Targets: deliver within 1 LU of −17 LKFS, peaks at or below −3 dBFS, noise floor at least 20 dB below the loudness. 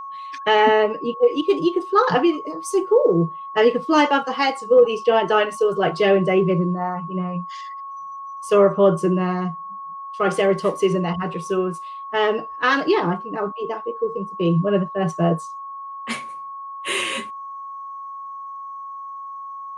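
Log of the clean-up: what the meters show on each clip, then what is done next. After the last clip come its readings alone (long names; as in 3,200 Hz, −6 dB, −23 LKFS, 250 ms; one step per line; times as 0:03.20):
interfering tone 1,100 Hz; level of the tone −31 dBFS; integrated loudness −20.0 LKFS; sample peak −4.0 dBFS; target loudness −17.0 LKFS
→ notch filter 1,100 Hz, Q 30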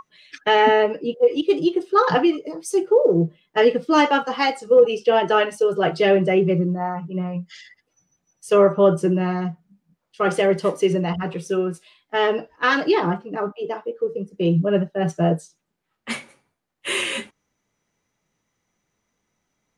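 interfering tone none found; integrated loudness −20.0 LKFS; sample peak −4.0 dBFS; target loudness −17.0 LKFS
→ level +3 dB
brickwall limiter −3 dBFS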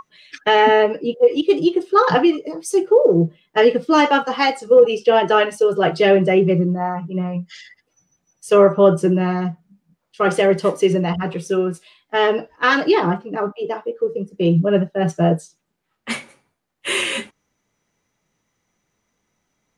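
integrated loudness −17.5 LKFS; sample peak −3.0 dBFS; background noise floor −73 dBFS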